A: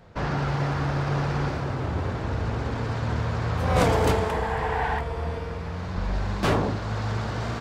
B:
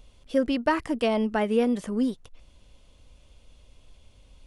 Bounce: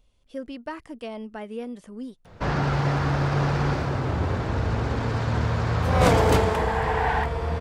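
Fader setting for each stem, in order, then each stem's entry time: +2.5, −11.0 decibels; 2.25, 0.00 seconds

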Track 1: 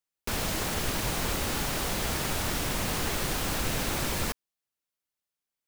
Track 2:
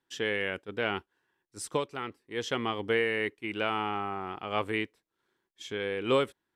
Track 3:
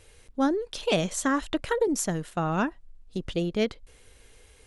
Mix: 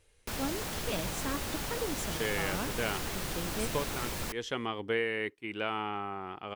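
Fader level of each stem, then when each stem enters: −6.5, −3.5, −12.0 decibels; 0.00, 2.00, 0.00 seconds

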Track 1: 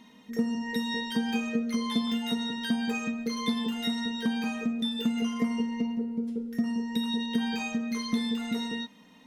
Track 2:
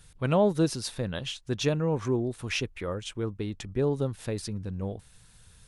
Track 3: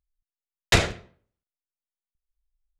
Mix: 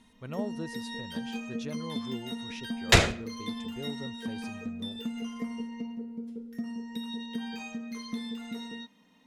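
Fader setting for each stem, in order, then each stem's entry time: −7.5, −14.0, 0.0 decibels; 0.00, 0.00, 2.20 seconds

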